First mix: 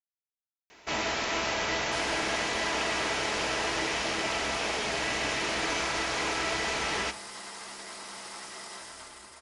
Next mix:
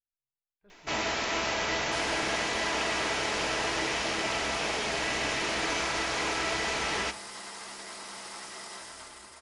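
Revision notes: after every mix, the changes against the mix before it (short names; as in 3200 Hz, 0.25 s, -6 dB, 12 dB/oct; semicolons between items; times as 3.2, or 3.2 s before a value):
speech: unmuted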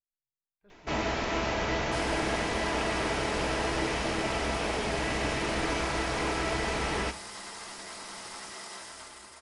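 first sound: add tilt -2.5 dB/oct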